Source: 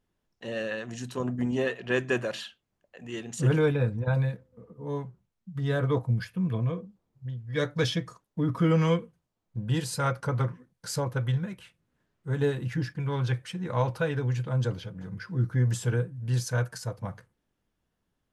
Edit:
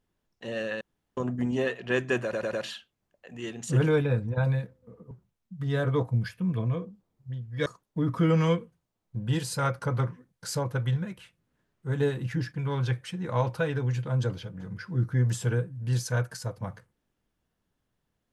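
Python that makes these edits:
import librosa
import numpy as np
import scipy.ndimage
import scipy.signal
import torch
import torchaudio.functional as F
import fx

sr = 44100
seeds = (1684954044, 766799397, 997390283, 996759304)

y = fx.edit(x, sr, fx.room_tone_fill(start_s=0.81, length_s=0.36),
    fx.stutter(start_s=2.23, slice_s=0.1, count=4),
    fx.cut(start_s=4.81, length_s=0.26),
    fx.cut(start_s=7.62, length_s=0.45), tone=tone)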